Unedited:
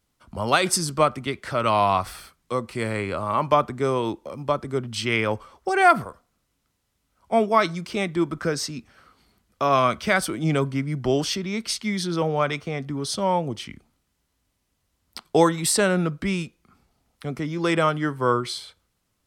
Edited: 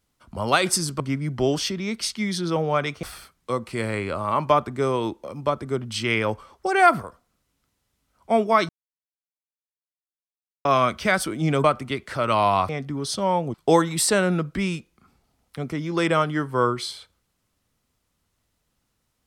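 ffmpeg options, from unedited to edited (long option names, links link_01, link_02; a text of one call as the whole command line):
ffmpeg -i in.wav -filter_complex "[0:a]asplit=8[link_01][link_02][link_03][link_04][link_05][link_06][link_07][link_08];[link_01]atrim=end=1.002[link_09];[link_02]atrim=start=10.658:end=12.692[link_10];[link_03]atrim=start=2.048:end=7.71,asetpts=PTS-STARTPTS,afade=type=out:start_time=5.658:duration=0.004:curve=hsin[link_11];[link_04]atrim=start=7.71:end=9.67,asetpts=PTS-STARTPTS,volume=0[link_12];[link_05]atrim=start=9.67:end=10.662,asetpts=PTS-STARTPTS,afade=type=in:duration=0.004:curve=hsin[link_13];[link_06]atrim=start=0.998:end=2.052[link_14];[link_07]atrim=start=12.688:end=13.542[link_15];[link_08]atrim=start=15.208[link_16];[link_09][link_10]acrossfade=duration=0.004:curve1=hsin:curve2=hsin[link_17];[link_11][link_12][link_13]concat=n=3:v=0:a=1[link_18];[link_17][link_18]acrossfade=duration=0.004:curve1=hsin:curve2=hsin[link_19];[link_19][link_14]acrossfade=duration=0.004:curve1=hsin:curve2=hsin[link_20];[link_20][link_15]acrossfade=duration=0.004:curve1=hsin:curve2=hsin[link_21];[link_21][link_16]acrossfade=duration=0.004:curve1=hsin:curve2=hsin" out.wav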